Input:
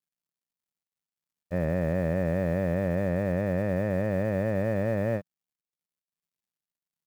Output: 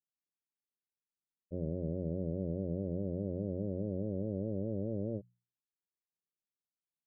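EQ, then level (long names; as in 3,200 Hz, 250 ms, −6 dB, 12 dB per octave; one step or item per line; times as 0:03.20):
transistor ladder low-pass 470 Hz, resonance 45%
high-frequency loss of the air 470 metres
mains-hum notches 60/120/180 Hz
0.0 dB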